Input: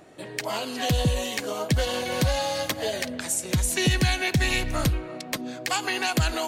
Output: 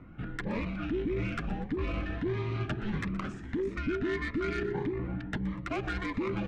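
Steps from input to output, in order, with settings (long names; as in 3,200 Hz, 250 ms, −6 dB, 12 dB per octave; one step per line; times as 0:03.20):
Chebyshev low-pass filter 2,400 Hz, order 3
reversed playback
downward compressor 6 to 1, threshold −30 dBFS, peak gain reduction 12.5 dB
reversed playback
harmonic generator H 4 −18 dB, 7 −44 dB, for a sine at −19.5 dBFS
soft clipping −23 dBFS, distortion −21 dB
frequency shifter −440 Hz
on a send: echo with shifted repeats 122 ms, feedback 46%, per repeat −43 Hz, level −16 dB
on the sum: phaser whose notches keep moving one way rising 1.6 Hz
level +2.5 dB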